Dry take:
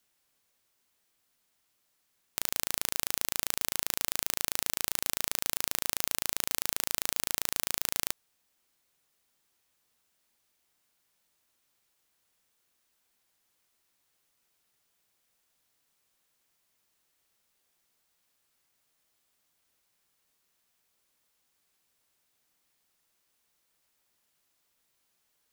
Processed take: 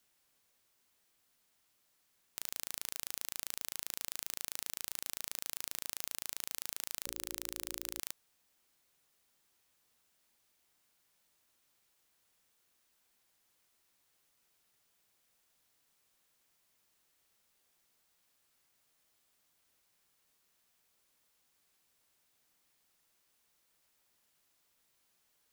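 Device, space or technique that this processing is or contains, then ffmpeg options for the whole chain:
saturation between pre-emphasis and de-emphasis: -filter_complex "[0:a]asettb=1/sr,asplit=3[a][b][c];[a]atrim=end=7.034[d];[b]atrim=start=7.03:end=8,asetpts=PTS-STARTPTS,afade=t=in:d=0.004:c=qsin,afade=t=out:st=0.966:d=0.004:c=qsin,bandreject=f=60:t=h:w=6,bandreject=f=120:t=h:w=6,bandreject=f=180:t=h:w=6,bandreject=f=240:t=h:w=6,bandreject=f=300:t=h:w=6,bandreject=f=360:t=h:w=6,bandreject=f=420:t=h:w=6,bandreject=f=480:t=h:w=6,bandreject=f=540:t=h:w=6[e];[c]atrim=start=7.996[f];[d][e]acrossfade=d=0.004:c1=hsin:c2=qsin[g];[g][f]acrossfade=d=0.004:c1=qsin:c2=hsin,highshelf=f=4.7k:g=8,asoftclip=type=tanh:threshold=-7dB,highshelf=f=4.7k:g=-8"

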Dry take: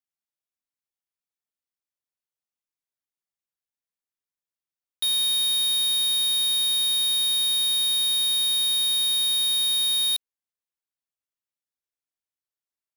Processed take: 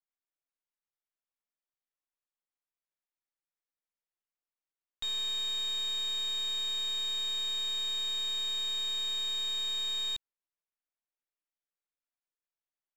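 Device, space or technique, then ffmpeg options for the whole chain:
crystal radio: -af "highpass=300,lowpass=2.6k,aeval=exprs='if(lt(val(0),0),0.447*val(0),val(0))':c=same"

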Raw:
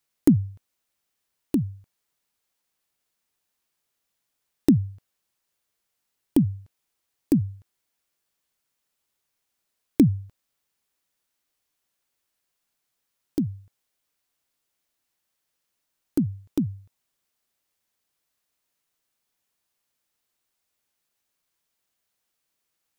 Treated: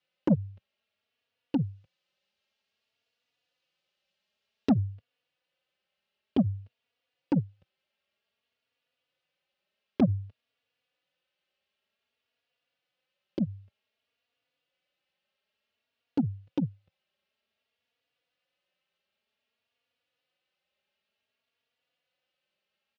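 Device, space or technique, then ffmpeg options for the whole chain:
barber-pole flanger into a guitar amplifier: -filter_complex "[0:a]asettb=1/sr,asplit=3[a][b][c];[a]atrim=end=1.584[d];[b]atrim=start=1.58:end=4.69,asetpts=PTS-STARTPTS,afade=t=in:d=0.004:c=qsin,afade=t=out:st=3.106:d=0.004:c=qsin,bass=f=250:g=1,treble=f=4k:g=8[e];[c]atrim=start=4.686[f];[d][e]acrossfade=d=0.004:c1=hsin:c2=qsin[g];[g][f]acrossfade=d=0.004:c1=qsin:c2=hsin,asplit=2[h][i];[i]adelay=3.5,afreqshift=0.54[j];[h][j]amix=inputs=2:normalize=1,asoftclip=type=tanh:threshold=-17dB,highpass=93,equalizer=f=130:t=q:w=4:g=-4,equalizer=f=320:t=q:w=4:g=-6,equalizer=f=540:t=q:w=4:g=8,equalizer=f=1k:t=q:w=4:g=-5,equalizer=f=2.8k:t=q:w=4:g=7,lowpass=f=4.2k:w=0.5412,lowpass=f=4.2k:w=1.3066,volume=2.5dB"

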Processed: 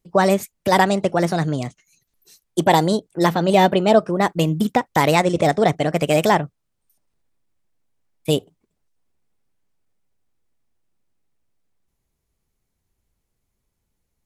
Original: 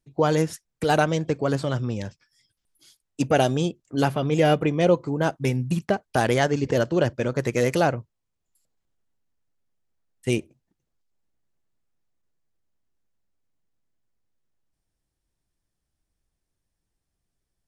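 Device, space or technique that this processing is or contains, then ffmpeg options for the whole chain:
nightcore: -af "asetrate=54684,aresample=44100,volume=5dB"

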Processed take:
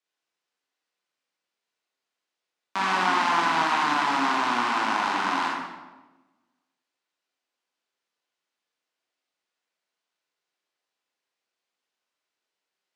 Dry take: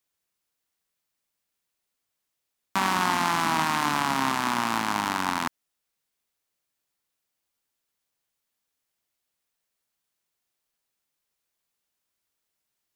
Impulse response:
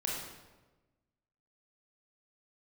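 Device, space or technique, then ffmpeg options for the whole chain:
supermarket ceiling speaker: -filter_complex "[0:a]highpass=310,lowpass=5.2k[a];[1:a]atrim=start_sample=2205[b];[a][b]afir=irnorm=-1:irlink=0,volume=-2dB"

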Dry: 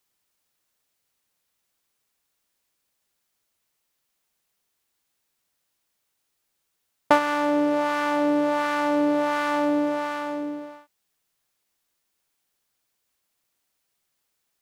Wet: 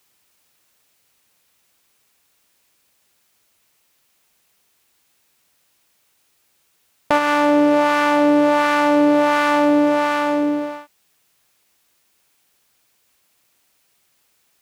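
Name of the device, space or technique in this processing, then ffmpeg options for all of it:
mastering chain: -af "highpass=41,equalizer=f=2.5k:t=o:w=0.44:g=2.5,acompressor=threshold=-27dB:ratio=2,alimiter=level_in=13.5dB:limit=-1dB:release=50:level=0:latency=1,volume=-1dB"

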